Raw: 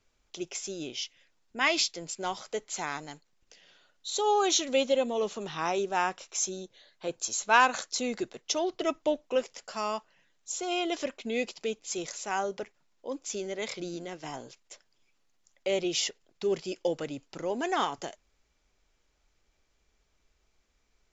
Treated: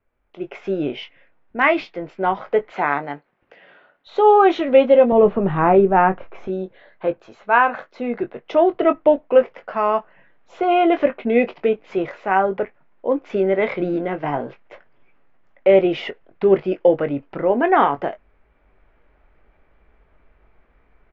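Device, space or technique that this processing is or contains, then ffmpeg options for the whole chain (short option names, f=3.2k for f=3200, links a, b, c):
action camera in a waterproof case: -filter_complex "[0:a]asettb=1/sr,asplit=3[a][b][c];[a]atrim=end=2.704[d];[b]atrim=start=2.7:end=4.07,asetpts=PTS-STARTPTS,afade=t=in:d=0.004:c=qsin,afade=t=out:st=1.366:d=0.004:c=qsin,highpass=f=230:p=1[e];[c]atrim=start=4.066[f];[d][e]acrossfade=d=0.004:c1=hsin:c2=qsin[g];[g][f]acrossfade=d=0.004:c1=qsin:c2=hsin,asettb=1/sr,asplit=3[h][i][j];[h]atrim=end=5.124[k];[i]atrim=start=5.12:end=6.48,asetpts=PTS-STARTPTS,afade=t=in:d=0.004:c=qsin,afade=t=out:st=1.356:d=0.004:c=qsin,aemphasis=mode=reproduction:type=riaa[l];[j]atrim=start=6.476[m];[k][l]acrossfade=d=0.004:c1=hsin:c2=qsin[n];[n][m]acrossfade=d=0.004:c1=qsin:c2=hsin,lowpass=f=2.1k:w=0.5412,lowpass=f=2.1k:w=1.3066,equalizer=f=620:w=2.1:g=2.5,asplit=2[o][p];[p]adelay=21,volume=-9dB[q];[o][q]amix=inputs=2:normalize=0,dynaudnorm=f=330:g=3:m=16.5dB,volume=-1dB" -ar 48000 -c:a aac -b:a 128k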